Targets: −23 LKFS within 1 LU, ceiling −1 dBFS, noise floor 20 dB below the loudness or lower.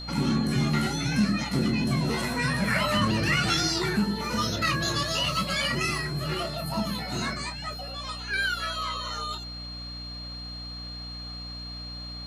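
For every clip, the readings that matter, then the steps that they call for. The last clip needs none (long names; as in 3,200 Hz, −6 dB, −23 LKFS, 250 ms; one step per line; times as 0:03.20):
mains hum 60 Hz; hum harmonics up to 300 Hz; level of the hum −38 dBFS; interfering tone 4,200 Hz; level of the tone −38 dBFS; integrated loudness −27.5 LKFS; sample peak −12.5 dBFS; target loudness −23.0 LKFS
→ mains-hum notches 60/120/180/240/300 Hz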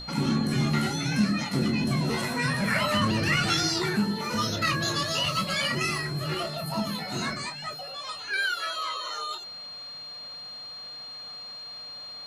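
mains hum none found; interfering tone 4,200 Hz; level of the tone −38 dBFS
→ notch filter 4,200 Hz, Q 30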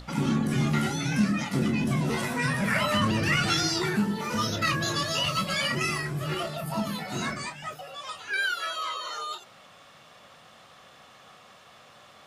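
interfering tone none found; integrated loudness −27.5 LKFS; sample peak −12.5 dBFS; target loudness −23.0 LKFS
→ level +4.5 dB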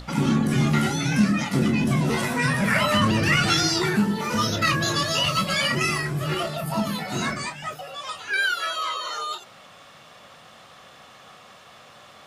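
integrated loudness −23.0 LKFS; sample peak −8.0 dBFS; background noise floor −49 dBFS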